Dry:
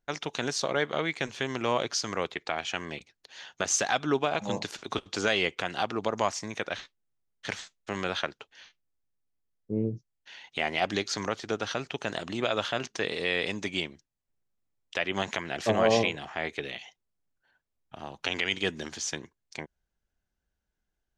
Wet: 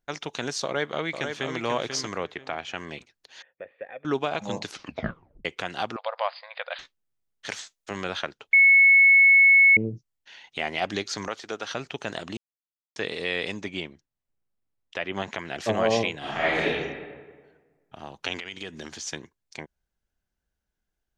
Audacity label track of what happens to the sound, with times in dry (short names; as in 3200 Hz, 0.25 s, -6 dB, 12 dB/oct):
0.640000	1.580000	echo throw 0.49 s, feedback 25%, level -6 dB
2.180000	2.780000	high shelf 4100 Hz -9.5 dB
3.420000	4.050000	vocal tract filter e
4.680000	4.680000	tape stop 0.77 s
5.960000	6.790000	brick-wall FIR band-pass 480–5000 Hz
7.460000	7.910000	tone controls bass -7 dB, treble +6 dB
8.530000	9.770000	bleep 2200 Hz -12 dBFS
11.280000	11.700000	HPF 440 Hz 6 dB/oct
12.370000	12.960000	mute
13.610000	15.390000	high shelf 4300 Hz -10.5 dB
16.180000	16.670000	reverb throw, RT60 1.5 s, DRR -10 dB
18.380000	19.070000	compressor, threshold -32 dBFS